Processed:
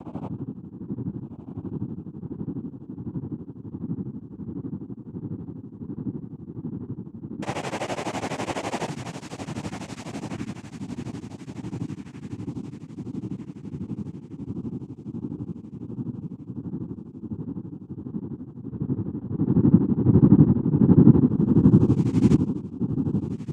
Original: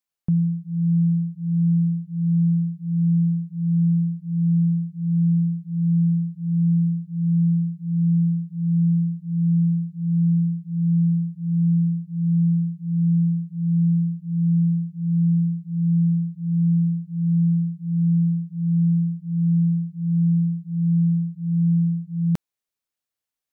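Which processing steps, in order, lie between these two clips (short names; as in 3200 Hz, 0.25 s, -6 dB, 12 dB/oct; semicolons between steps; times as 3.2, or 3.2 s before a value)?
spectral swells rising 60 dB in 2.01 s; 7.42–8.89 Schmitt trigger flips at -35.5 dBFS; feedback echo 0.124 s, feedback 51%, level -16.5 dB; high-pass sweep 330 Hz -> 140 Hz, 18.52–20.37; diffused feedback echo 1.388 s, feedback 41%, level -9.5 dB; noise vocoder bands 4; beating tremolo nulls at 12 Hz; gain -2.5 dB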